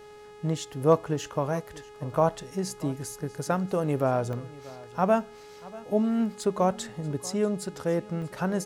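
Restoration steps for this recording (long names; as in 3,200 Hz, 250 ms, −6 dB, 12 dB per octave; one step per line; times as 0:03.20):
hum removal 418.8 Hz, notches 25
repair the gap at 0:04.33/0:08.22, 1.5 ms
echo removal 637 ms −20 dB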